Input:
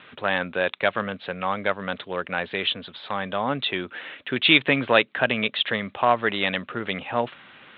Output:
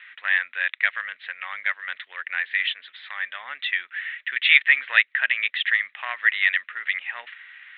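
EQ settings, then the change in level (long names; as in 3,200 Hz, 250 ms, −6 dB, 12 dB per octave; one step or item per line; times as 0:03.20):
high-pass with resonance 1,900 Hz, resonance Q 6.5
high-frequency loss of the air 84 metres
−4.5 dB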